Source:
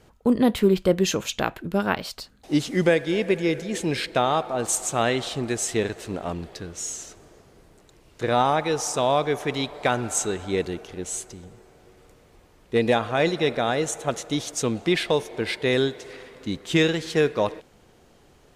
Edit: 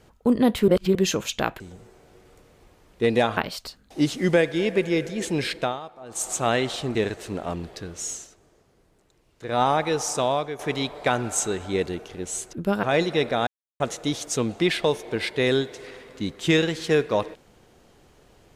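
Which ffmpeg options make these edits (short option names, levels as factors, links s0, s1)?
-filter_complex "[0:a]asplit=15[s0][s1][s2][s3][s4][s5][s6][s7][s8][s9][s10][s11][s12][s13][s14];[s0]atrim=end=0.682[s15];[s1]atrim=start=0.678:end=0.952,asetpts=PTS-STARTPTS,areverse[s16];[s2]atrim=start=0.948:end=1.602[s17];[s3]atrim=start=11.318:end=13.092[s18];[s4]atrim=start=1.898:end=4.33,asetpts=PTS-STARTPTS,afade=t=out:st=2.192:d=0.24:silence=0.16788[s19];[s5]atrim=start=4.33:end=4.61,asetpts=PTS-STARTPTS,volume=0.168[s20];[s6]atrim=start=4.61:end=5.482,asetpts=PTS-STARTPTS,afade=t=in:d=0.24:silence=0.16788[s21];[s7]atrim=start=5.738:end=7.08,asetpts=PTS-STARTPTS,afade=t=out:st=1.172:d=0.17:silence=0.354813[s22];[s8]atrim=start=7.08:end=8.25,asetpts=PTS-STARTPTS,volume=0.355[s23];[s9]atrim=start=8.25:end=9.38,asetpts=PTS-STARTPTS,afade=t=in:d=0.17:silence=0.354813,afade=t=out:st=0.73:d=0.4:silence=0.251189[s24];[s10]atrim=start=9.38:end=11.322,asetpts=PTS-STARTPTS,afade=t=in:d=0.004:c=hsin:silence=0.251189[s25];[s11]atrim=start=1.598:end=1.902[s26];[s12]atrim=start=13.088:end=13.73,asetpts=PTS-STARTPTS,afade=t=out:st=0.638:d=0.004:c=hsin[s27];[s13]atrim=start=13.73:end=14.06,asetpts=PTS-STARTPTS,volume=0[s28];[s14]atrim=start=14.06,asetpts=PTS-STARTPTS,afade=t=in:d=0.004:c=hsin[s29];[s15][s16]acrossfade=d=0.004:c1=hsin:c2=hsin[s30];[s30][s17]acrossfade=d=0.004:c1=hsin:c2=hsin[s31];[s31][s18]acrossfade=d=0.004:c1=hsin:c2=hsin[s32];[s19][s20][s21]concat=n=3:v=0:a=1[s33];[s32][s33]acrossfade=d=0.004:c1=hsin:c2=hsin[s34];[s22][s23][s24][s25]concat=n=4:v=0:a=1[s35];[s34][s35]acrossfade=d=0.004:c1=hsin:c2=hsin[s36];[s36][s26]acrossfade=d=0.004:c1=hsin:c2=hsin[s37];[s27][s28][s29]concat=n=3:v=0:a=1[s38];[s37][s38]acrossfade=d=0.004:c1=hsin:c2=hsin"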